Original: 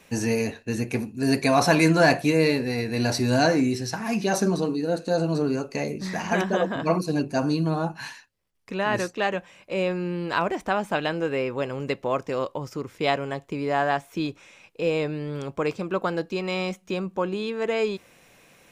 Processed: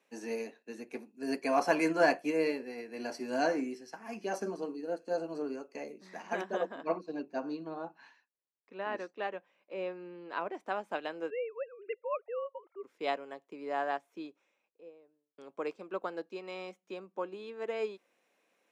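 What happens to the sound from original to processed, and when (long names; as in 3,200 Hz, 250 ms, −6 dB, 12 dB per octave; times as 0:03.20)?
0:01.15–0:05.90: Butterworth band-reject 3,800 Hz, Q 5.7
0:06.83–0:10.55: high-frequency loss of the air 130 metres
0:11.30–0:12.83: three sine waves on the formant tracks
0:13.91–0:15.38: fade out and dull
whole clip: Bessel high-pass filter 390 Hz, order 6; spectral tilt −2 dB per octave; expander for the loud parts 1.5 to 1, over −38 dBFS; level −6 dB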